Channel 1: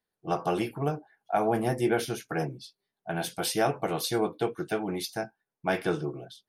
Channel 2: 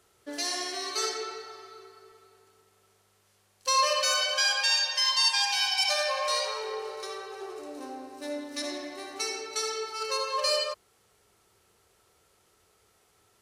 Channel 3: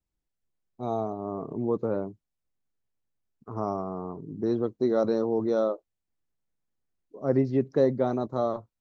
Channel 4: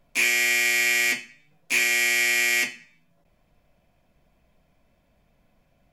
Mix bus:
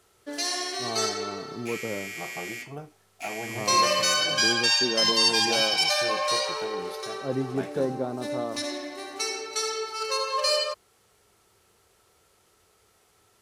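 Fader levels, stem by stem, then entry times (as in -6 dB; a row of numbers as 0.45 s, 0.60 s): -10.5 dB, +2.5 dB, -5.0 dB, -16.0 dB; 1.90 s, 0.00 s, 0.00 s, 1.50 s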